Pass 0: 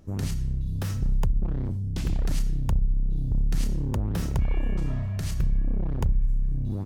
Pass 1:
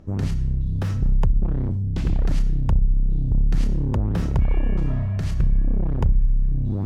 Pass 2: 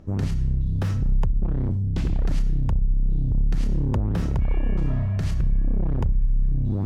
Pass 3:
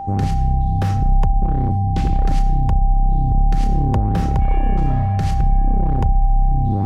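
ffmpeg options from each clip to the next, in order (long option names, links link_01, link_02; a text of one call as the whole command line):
ffmpeg -i in.wav -af "aemphasis=mode=reproduction:type=75kf,areverse,acompressor=mode=upward:threshold=-27dB:ratio=2.5,areverse,volume=5dB" out.wav
ffmpeg -i in.wav -af "alimiter=limit=-14dB:level=0:latency=1:release=174" out.wav
ffmpeg -i in.wav -af "aeval=exprs='val(0)+0.0282*sin(2*PI*790*n/s)':channel_layout=same,volume=5.5dB" out.wav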